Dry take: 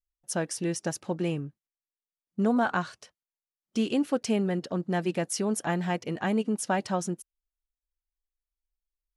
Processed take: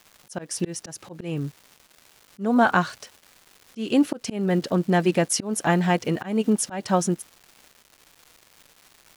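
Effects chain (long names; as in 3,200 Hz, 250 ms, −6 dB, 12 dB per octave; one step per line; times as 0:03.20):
surface crackle 550 per second −47 dBFS
volume swells 243 ms
level +8 dB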